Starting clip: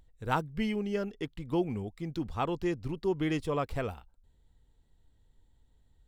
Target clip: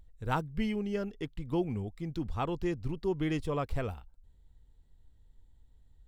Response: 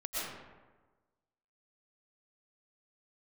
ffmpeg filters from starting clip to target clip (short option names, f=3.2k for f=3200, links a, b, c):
-af "lowshelf=f=110:g=9,volume=-2.5dB"